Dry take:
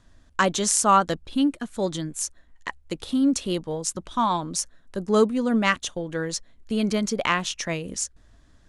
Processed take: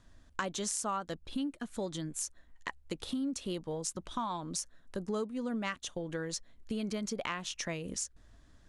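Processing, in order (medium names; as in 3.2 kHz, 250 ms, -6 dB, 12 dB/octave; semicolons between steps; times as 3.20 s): compression 4:1, threshold -30 dBFS, peak gain reduction 14.5 dB; trim -4 dB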